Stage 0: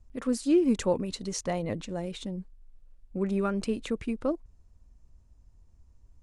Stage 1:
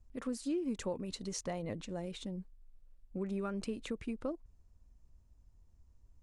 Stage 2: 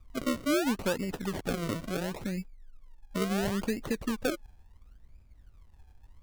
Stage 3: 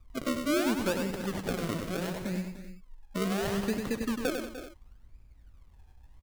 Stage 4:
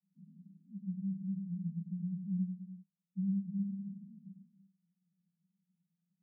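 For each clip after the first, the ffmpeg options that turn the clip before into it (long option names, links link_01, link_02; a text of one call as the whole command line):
ffmpeg -i in.wav -af "acompressor=threshold=-29dB:ratio=3,volume=-5.5dB" out.wav
ffmpeg -i in.wav -af "highshelf=frequency=9100:gain=-7.5,acrusher=samples=36:mix=1:aa=0.000001:lfo=1:lforange=36:lforate=0.72,volume=7.5dB" out.wav
ffmpeg -i in.wav -af "aecho=1:1:99|187|298|329|385:0.531|0.2|0.211|0.133|0.126,volume=-1dB" out.wav
ffmpeg -i in.wav -af "asuperpass=centerf=180:order=8:qfactor=4.4" out.wav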